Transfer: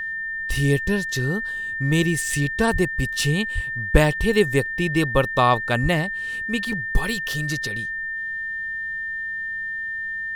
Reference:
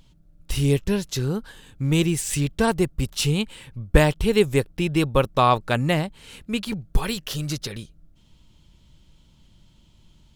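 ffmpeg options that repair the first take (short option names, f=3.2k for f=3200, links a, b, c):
-filter_complex "[0:a]bandreject=f=1.8k:w=30,asplit=3[a][b][c];[a]afade=t=out:st=2.72:d=0.02[d];[b]highpass=f=140:w=0.5412,highpass=f=140:w=1.3066,afade=t=in:st=2.72:d=0.02,afade=t=out:st=2.84:d=0.02[e];[c]afade=t=in:st=2.84:d=0.02[f];[d][e][f]amix=inputs=3:normalize=0,asplit=3[g][h][i];[g]afade=t=out:st=3.54:d=0.02[j];[h]highpass=f=140:w=0.5412,highpass=f=140:w=1.3066,afade=t=in:st=3.54:d=0.02,afade=t=out:st=3.66:d=0.02[k];[i]afade=t=in:st=3.66:d=0.02[l];[j][k][l]amix=inputs=3:normalize=0,asplit=3[m][n][o];[m]afade=t=out:st=5.82:d=0.02[p];[n]highpass=f=140:w=0.5412,highpass=f=140:w=1.3066,afade=t=in:st=5.82:d=0.02,afade=t=out:st=5.94:d=0.02[q];[o]afade=t=in:st=5.94:d=0.02[r];[p][q][r]amix=inputs=3:normalize=0"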